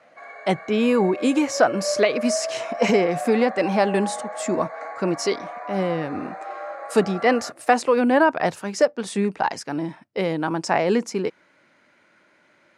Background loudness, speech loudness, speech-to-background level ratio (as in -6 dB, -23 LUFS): -32.0 LUFS, -22.5 LUFS, 9.5 dB